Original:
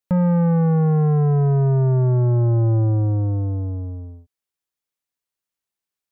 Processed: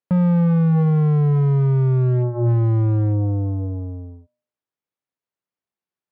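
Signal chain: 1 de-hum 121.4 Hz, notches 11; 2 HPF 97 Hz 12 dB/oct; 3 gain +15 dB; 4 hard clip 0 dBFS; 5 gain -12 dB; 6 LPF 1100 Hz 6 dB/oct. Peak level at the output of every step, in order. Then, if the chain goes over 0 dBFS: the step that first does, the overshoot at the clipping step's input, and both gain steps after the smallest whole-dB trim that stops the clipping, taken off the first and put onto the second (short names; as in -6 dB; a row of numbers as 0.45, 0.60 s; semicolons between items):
-11.5, -11.0, +4.0, 0.0, -12.0, -12.0 dBFS; step 3, 4.0 dB; step 3 +11 dB, step 5 -8 dB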